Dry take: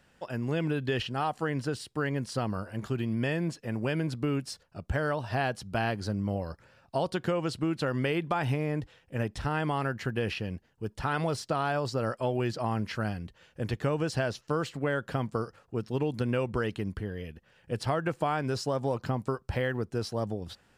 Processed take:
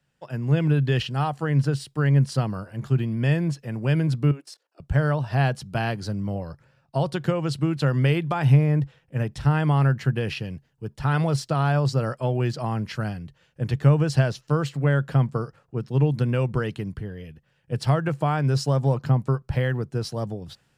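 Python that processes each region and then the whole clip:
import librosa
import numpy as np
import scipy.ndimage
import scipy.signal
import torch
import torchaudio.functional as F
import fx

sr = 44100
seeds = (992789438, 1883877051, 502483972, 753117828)

y = fx.chain(x, sr, fx.ellip_highpass(hz=300.0, order=4, stop_db=40),
    fx.level_steps(step_db=15), at=(4.31, 4.8))
y = fx.peak_eq(y, sr, hz=140.0, db=13.5, octaves=0.37)
y = fx.band_widen(y, sr, depth_pct=40)
y = y * 10.0 ** (3.0 / 20.0)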